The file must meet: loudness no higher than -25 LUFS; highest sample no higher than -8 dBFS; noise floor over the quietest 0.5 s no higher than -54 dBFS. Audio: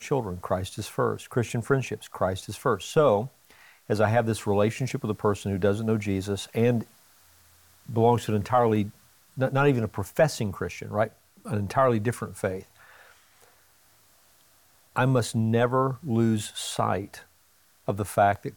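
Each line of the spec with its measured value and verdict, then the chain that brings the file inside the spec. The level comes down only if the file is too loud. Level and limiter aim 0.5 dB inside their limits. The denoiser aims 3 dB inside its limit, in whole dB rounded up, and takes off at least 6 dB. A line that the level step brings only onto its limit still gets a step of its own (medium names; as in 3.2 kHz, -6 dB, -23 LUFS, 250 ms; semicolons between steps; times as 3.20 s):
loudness -26.5 LUFS: pass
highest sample -9.5 dBFS: pass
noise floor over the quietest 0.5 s -61 dBFS: pass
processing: none needed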